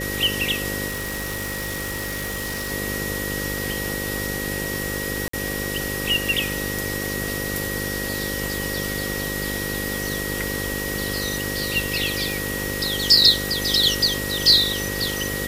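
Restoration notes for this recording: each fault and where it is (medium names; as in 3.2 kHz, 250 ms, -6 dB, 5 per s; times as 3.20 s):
buzz 50 Hz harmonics 11 -30 dBFS
whine 1.9 kHz -30 dBFS
0.87–2.72 s: clipped -24 dBFS
5.28–5.33 s: dropout 54 ms
12.32 s: pop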